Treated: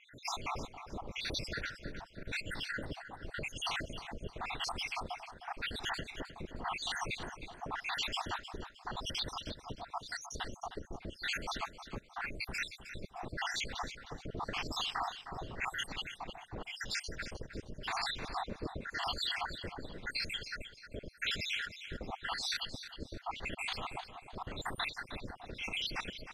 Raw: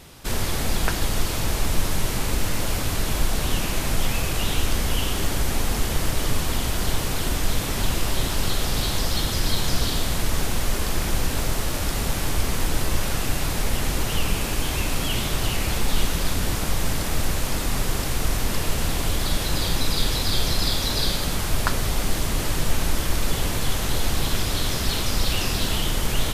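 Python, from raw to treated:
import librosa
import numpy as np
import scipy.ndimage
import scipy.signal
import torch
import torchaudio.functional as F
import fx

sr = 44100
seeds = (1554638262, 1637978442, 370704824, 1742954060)

y = fx.spec_dropout(x, sr, seeds[0], share_pct=76)
y = fx.low_shelf(y, sr, hz=130.0, db=-8.5)
y = fx.over_compress(y, sr, threshold_db=-36.0, ratio=-1.0)
y = fx.filter_lfo_lowpass(y, sr, shape='sine', hz=0.9, low_hz=430.0, high_hz=4600.0, q=1.3)
y = fx.echo_feedback(y, sr, ms=310, feedback_pct=33, wet_db=-11.5)
y = y * 10.0 ** (-2.5 / 20.0)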